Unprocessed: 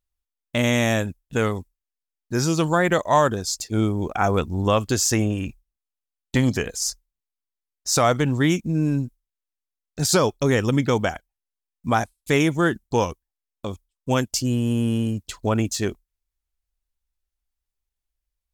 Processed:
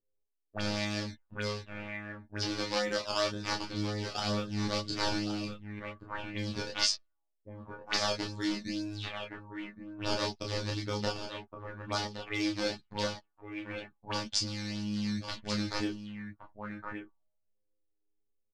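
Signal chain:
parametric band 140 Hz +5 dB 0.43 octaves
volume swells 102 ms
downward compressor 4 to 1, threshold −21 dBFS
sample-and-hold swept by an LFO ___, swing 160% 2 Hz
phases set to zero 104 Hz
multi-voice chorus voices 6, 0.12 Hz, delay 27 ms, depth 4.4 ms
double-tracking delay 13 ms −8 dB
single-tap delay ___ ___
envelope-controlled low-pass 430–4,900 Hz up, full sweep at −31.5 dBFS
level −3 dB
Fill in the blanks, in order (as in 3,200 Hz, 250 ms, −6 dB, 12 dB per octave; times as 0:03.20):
13×, 1,118 ms, −9.5 dB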